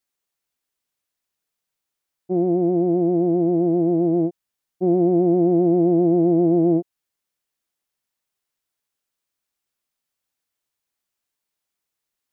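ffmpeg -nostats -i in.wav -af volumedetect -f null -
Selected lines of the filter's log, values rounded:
mean_volume: -22.4 dB
max_volume: -9.2 dB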